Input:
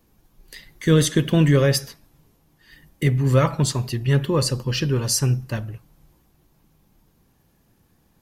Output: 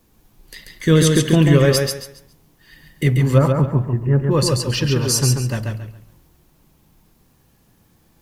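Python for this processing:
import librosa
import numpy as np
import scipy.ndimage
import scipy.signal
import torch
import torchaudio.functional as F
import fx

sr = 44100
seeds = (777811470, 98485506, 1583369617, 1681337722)

y = fx.gaussian_blur(x, sr, sigma=5.7, at=(3.37, 4.3), fade=0.02)
y = fx.quant_dither(y, sr, seeds[0], bits=12, dither='triangular')
y = fx.echo_feedback(y, sr, ms=138, feedback_pct=27, wet_db=-4.0)
y = y * librosa.db_to_amplitude(2.5)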